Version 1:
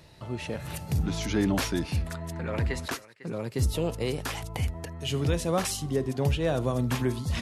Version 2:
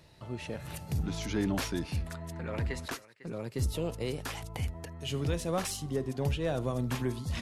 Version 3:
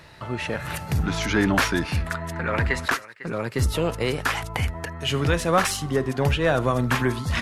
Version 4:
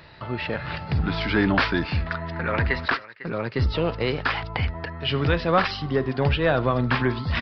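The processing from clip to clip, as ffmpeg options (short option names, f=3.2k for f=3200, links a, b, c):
-af "aeval=exprs='0.2*(cos(1*acos(clip(val(0)/0.2,-1,1)))-cos(1*PI/2))+0.00501*(cos(6*acos(clip(val(0)/0.2,-1,1)))-cos(6*PI/2))':c=same,volume=-5dB"
-af "equalizer=f=1.5k:t=o:w=1.6:g=11,volume=8dB"
-af "aresample=11025,aresample=44100"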